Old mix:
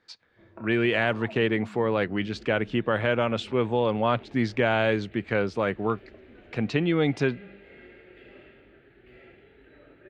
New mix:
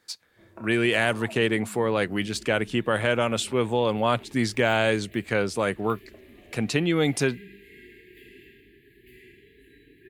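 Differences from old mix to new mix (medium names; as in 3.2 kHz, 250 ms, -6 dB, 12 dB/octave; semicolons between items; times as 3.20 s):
second sound: add brick-wall FIR band-stop 460–1600 Hz; master: remove distance through air 210 m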